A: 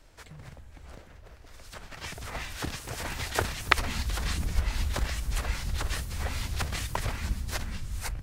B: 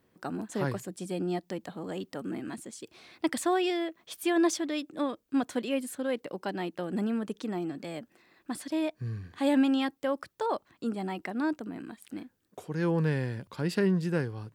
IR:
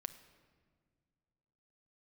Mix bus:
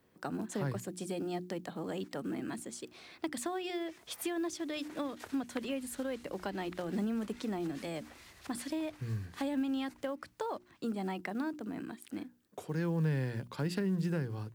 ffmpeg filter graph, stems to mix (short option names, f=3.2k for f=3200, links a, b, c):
-filter_complex "[0:a]highpass=f=390:p=1,adelay=1850,volume=-18dB,asplit=2[a][b];[b]volume=-13dB[c];[1:a]bandreject=f=60:t=h:w=6,bandreject=f=120:t=h:w=6,bandreject=f=180:t=h:w=6,bandreject=f=240:t=h:w=6,bandreject=f=300:t=h:w=6,bandreject=f=360:t=h:w=6,acrusher=bits=8:mode=log:mix=0:aa=0.000001,volume=0dB[d];[c]aecho=0:1:1157:1[e];[a][d][e]amix=inputs=3:normalize=0,acrossover=split=170[f][g];[g]acompressor=threshold=-34dB:ratio=10[h];[f][h]amix=inputs=2:normalize=0"